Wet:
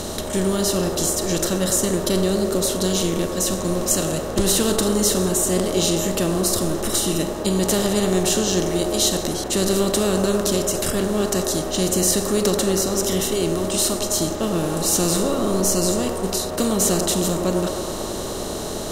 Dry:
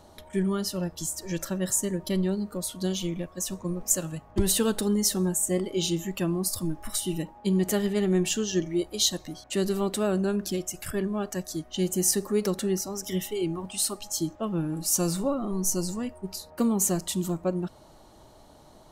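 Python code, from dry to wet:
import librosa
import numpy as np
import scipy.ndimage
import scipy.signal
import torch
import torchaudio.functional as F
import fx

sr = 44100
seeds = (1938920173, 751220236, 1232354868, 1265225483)

y = fx.bin_compress(x, sr, power=0.4)
y = fx.echo_wet_bandpass(y, sr, ms=103, feedback_pct=76, hz=680.0, wet_db=-4)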